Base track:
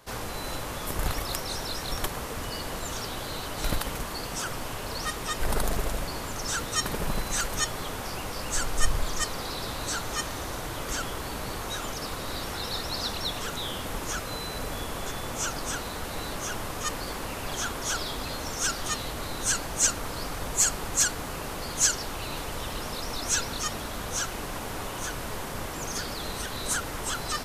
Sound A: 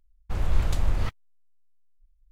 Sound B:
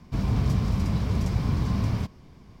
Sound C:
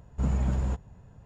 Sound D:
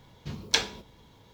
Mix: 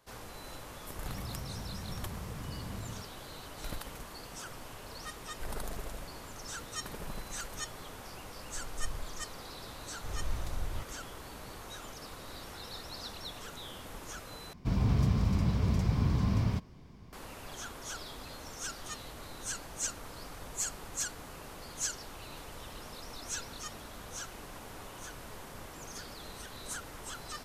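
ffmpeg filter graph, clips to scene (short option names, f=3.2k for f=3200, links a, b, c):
-filter_complex "[2:a]asplit=2[a][b];[0:a]volume=-12dB[c];[a]alimiter=limit=-23dB:level=0:latency=1:release=71[d];[c]asplit=2[e][f];[e]atrim=end=14.534[g];[b]atrim=end=2.6,asetpts=PTS-STARTPTS,volume=-3.5dB[h];[f]atrim=start=17.126[i];[d]atrim=end=2.6,asetpts=PTS-STARTPTS,volume=-12dB,afade=t=in:d=0.004:c=hsin,afade=t=out:st=2.596:d=0.004:c=hsin,adelay=960[j];[1:a]atrim=end=2.31,asetpts=PTS-STARTPTS,volume=-12.5dB,afade=t=in:d=0.004:c=hsin,afade=t=out:st=2.306:d=0.004:c=hsin,adelay=9740[k];[g][h]acrossfade=d=0.004:c1=hsin:c2=hsin[l];[l][i]acrossfade=d=0.004:c1=hsin:c2=hsin[m];[m][j][k]amix=inputs=3:normalize=0"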